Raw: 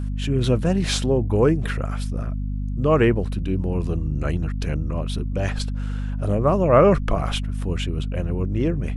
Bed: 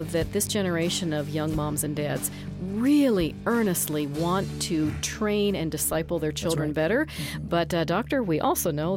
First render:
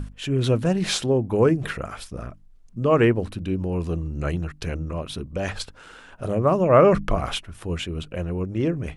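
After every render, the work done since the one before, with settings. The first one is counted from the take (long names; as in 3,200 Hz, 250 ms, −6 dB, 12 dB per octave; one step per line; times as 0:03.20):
mains-hum notches 50/100/150/200/250/300 Hz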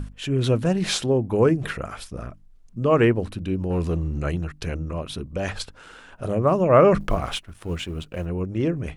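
0:03.70–0:04.19: leveller curve on the samples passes 1
0:07.00–0:08.26: mu-law and A-law mismatch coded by A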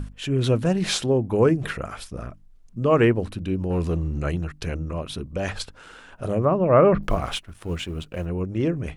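0:06.45–0:07.03: high-frequency loss of the air 340 metres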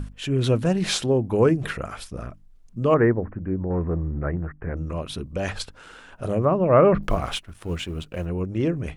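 0:02.94–0:04.77: elliptic low-pass filter 1,900 Hz, stop band 50 dB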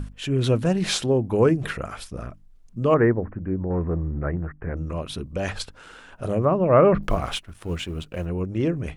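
no processing that can be heard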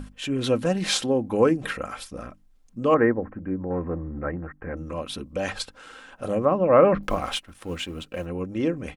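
low-shelf EQ 130 Hz −10.5 dB
comb filter 3.8 ms, depth 42%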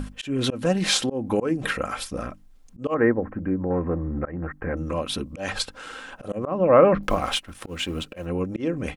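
volume swells 201 ms
in parallel at +1 dB: downward compressor, threshold −32 dBFS, peak gain reduction 19 dB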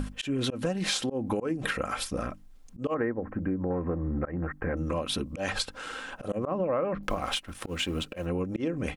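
downward compressor 6 to 1, threshold −26 dBFS, peak gain reduction 15 dB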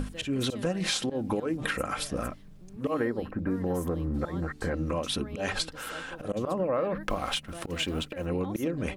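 mix in bed −19.5 dB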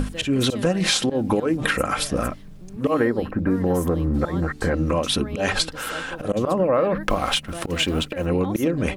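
level +8.5 dB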